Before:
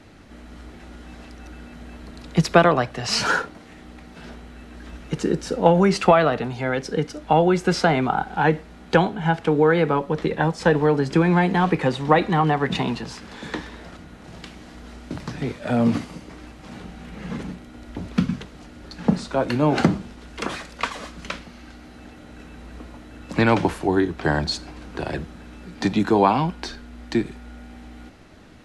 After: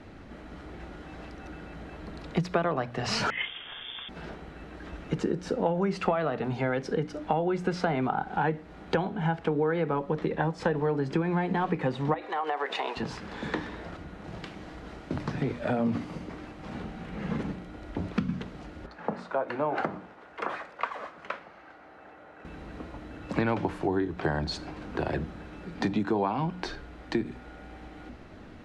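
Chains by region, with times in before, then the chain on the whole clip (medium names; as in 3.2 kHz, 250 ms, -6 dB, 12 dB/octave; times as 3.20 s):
3.30–4.09 s: frequency inversion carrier 3.5 kHz + compressor with a negative ratio -28 dBFS
12.14–12.97 s: high-pass 460 Hz 24 dB/octave + compression 4:1, threshold -24 dBFS
18.86–22.45 s: high-pass 83 Hz + three-band isolator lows -16 dB, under 470 Hz, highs -13 dB, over 2.1 kHz
whole clip: low-pass 2 kHz 6 dB/octave; hum notches 60/120/180/240/300 Hz; compression 4:1, threshold -27 dBFS; trim +1.5 dB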